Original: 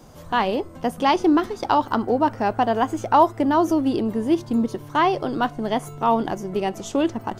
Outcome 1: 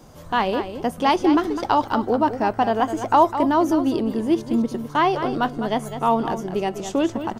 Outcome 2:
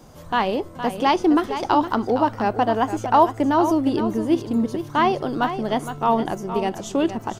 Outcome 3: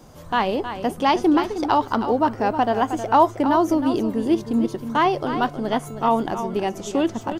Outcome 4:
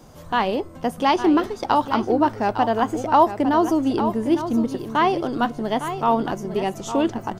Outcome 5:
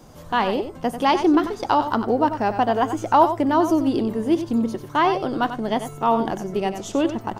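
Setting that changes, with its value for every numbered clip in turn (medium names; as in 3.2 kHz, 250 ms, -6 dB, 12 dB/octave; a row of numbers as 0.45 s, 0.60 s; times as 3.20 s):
delay, time: 205 ms, 464 ms, 315 ms, 857 ms, 93 ms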